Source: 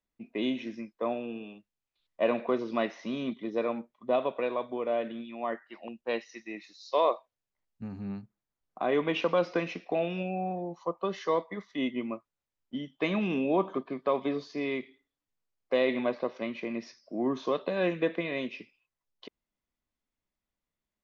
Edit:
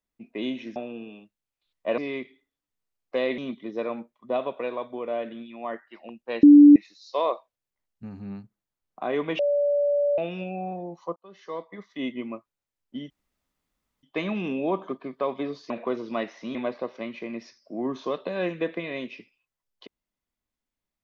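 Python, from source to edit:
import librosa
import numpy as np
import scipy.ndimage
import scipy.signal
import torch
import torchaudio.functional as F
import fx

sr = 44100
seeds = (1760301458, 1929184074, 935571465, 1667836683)

y = fx.edit(x, sr, fx.cut(start_s=0.76, length_s=0.34),
    fx.swap(start_s=2.32, length_s=0.85, other_s=14.56, other_length_s=1.4),
    fx.bleep(start_s=6.22, length_s=0.33, hz=291.0, db=-7.0),
    fx.bleep(start_s=9.18, length_s=0.79, hz=577.0, db=-19.5),
    fx.fade_in_span(start_s=10.95, length_s=0.86),
    fx.insert_room_tone(at_s=12.89, length_s=0.93), tone=tone)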